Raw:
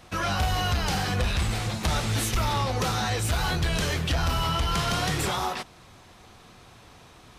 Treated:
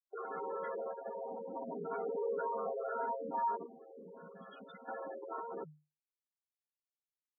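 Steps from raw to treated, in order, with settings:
channel vocoder with a chord as carrier minor triad, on C4
comparator with hysteresis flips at −32.5 dBFS
frequency shifter +150 Hz
gate on every frequency bin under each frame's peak −10 dB strong
0:01.56–0:03.57: comb filter 4.3 ms, depth 88%
0:03.66–0:04.88: gain on a spectral selection 280–1,900 Hz −14 dB
dynamic equaliser 200 Hz, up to −6 dB, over −45 dBFS, Q 1.1
flanger whose copies keep moving one way rising 0.57 Hz
level −3 dB

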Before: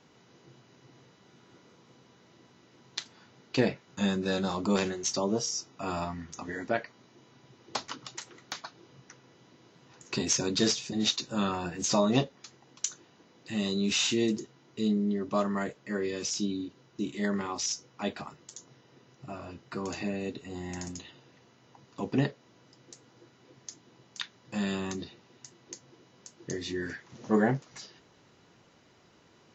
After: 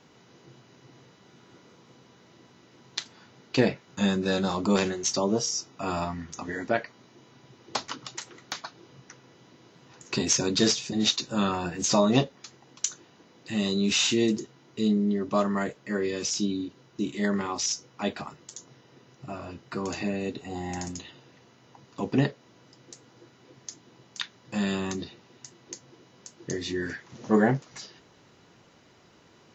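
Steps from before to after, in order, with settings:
0:20.37–0:20.85: parametric band 780 Hz +13.5 dB → +7.5 dB 0.33 octaves
level +3.5 dB

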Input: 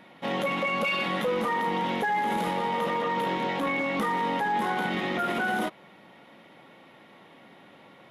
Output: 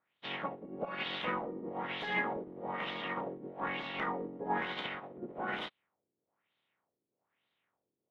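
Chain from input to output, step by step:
ceiling on every frequency bin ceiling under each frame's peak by 16 dB
auto-filter low-pass sine 1.1 Hz 350–3,800 Hz
expander for the loud parts 2.5 to 1, over −39 dBFS
level −7 dB

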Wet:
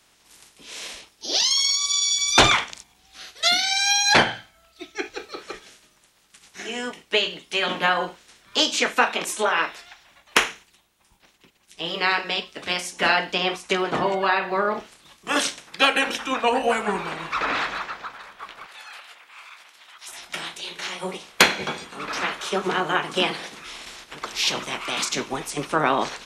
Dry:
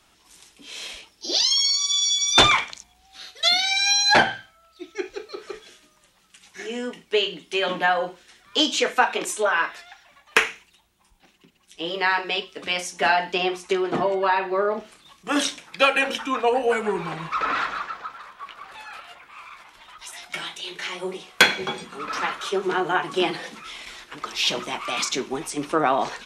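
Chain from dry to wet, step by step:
ceiling on every frequency bin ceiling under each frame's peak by 12 dB
0:18.66–0:20.08: high-pass filter 1,100 Hz 6 dB per octave

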